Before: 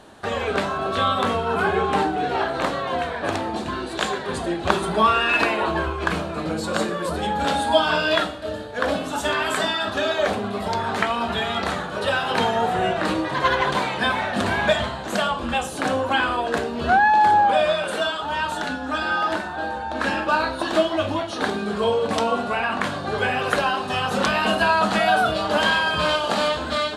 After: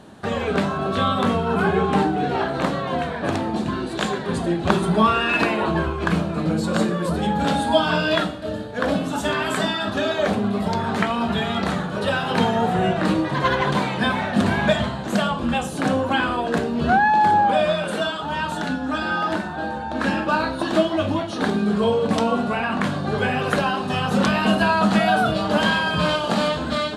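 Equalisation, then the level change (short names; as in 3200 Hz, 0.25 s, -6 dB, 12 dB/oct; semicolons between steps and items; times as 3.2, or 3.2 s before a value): bell 170 Hz +11 dB 1.6 oct; -1.5 dB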